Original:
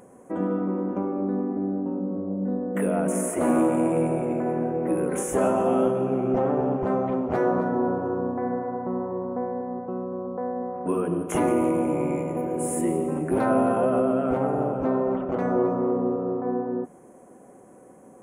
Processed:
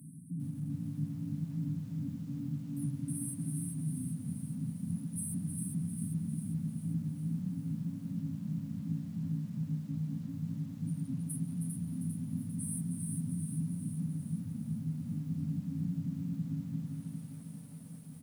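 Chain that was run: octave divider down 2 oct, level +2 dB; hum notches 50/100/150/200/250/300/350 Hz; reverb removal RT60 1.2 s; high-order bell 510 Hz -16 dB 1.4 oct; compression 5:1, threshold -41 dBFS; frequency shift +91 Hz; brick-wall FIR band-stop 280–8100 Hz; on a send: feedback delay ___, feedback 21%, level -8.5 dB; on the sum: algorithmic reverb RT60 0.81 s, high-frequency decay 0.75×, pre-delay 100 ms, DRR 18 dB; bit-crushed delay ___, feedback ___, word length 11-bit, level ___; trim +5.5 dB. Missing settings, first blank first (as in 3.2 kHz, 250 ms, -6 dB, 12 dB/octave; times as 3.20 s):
314 ms, 399 ms, 55%, -4 dB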